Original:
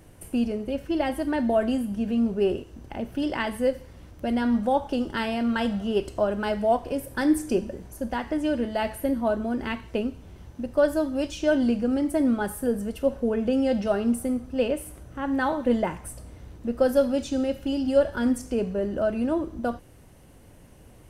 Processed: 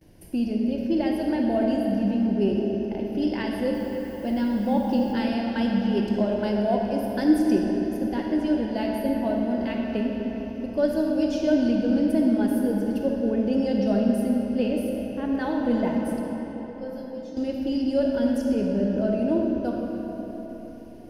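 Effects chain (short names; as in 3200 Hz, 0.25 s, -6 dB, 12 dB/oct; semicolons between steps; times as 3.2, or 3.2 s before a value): gate with hold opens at -43 dBFS; thirty-one-band EQ 200 Hz +8 dB, 315 Hz +7 dB, 1250 Hz -11 dB, 5000 Hz +8 dB, 8000 Hz -11 dB; 3.73–5.12 added noise violet -54 dBFS; 16.2–17.37 resonator bank G#3 major, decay 0.23 s; reverb RT60 4.5 s, pre-delay 15 ms, DRR 0 dB; gain -4.5 dB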